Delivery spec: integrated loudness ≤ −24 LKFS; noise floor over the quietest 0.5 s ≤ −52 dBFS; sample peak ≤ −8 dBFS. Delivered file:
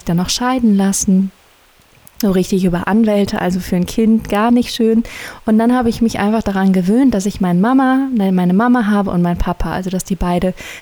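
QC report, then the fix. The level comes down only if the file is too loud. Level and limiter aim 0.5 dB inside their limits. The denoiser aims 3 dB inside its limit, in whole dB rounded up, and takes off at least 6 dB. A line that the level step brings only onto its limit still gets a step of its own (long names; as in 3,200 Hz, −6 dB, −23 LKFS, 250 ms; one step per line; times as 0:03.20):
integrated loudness −14.5 LKFS: out of spec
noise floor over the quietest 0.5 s −49 dBFS: out of spec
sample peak −4.5 dBFS: out of spec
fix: level −10 dB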